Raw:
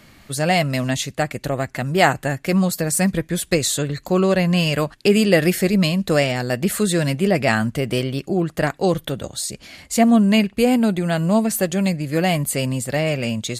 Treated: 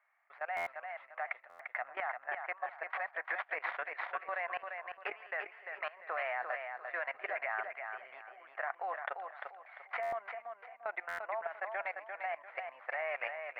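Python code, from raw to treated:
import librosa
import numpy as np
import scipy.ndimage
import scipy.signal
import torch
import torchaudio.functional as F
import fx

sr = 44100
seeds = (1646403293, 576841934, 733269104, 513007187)

y = fx.tracing_dist(x, sr, depth_ms=0.19)
y = scipy.signal.sosfilt(scipy.signal.ellip(3, 1.0, 60, [710.0, 2100.0], 'bandpass', fs=sr, output='sos'), y)
y = fx.tremolo_random(y, sr, seeds[0], hz=3.5, depth_pct=95)
y = fx.level_steps(y, sr, step_db=20)
y = fx.echo_feedback(y, sr, ms=346, feedback_pct=31, wet_db=-6.0)
y = fx.buffer_glitch(y, sr, at_s=(0.56, 1.49, 10.02, 11.08), block=512, repeats=8)
y = fx.band_squash(y, sr, depth_pct=100, at=(3.3, 4.24))
y = y * 10.0 ** (3.5 / 20.0)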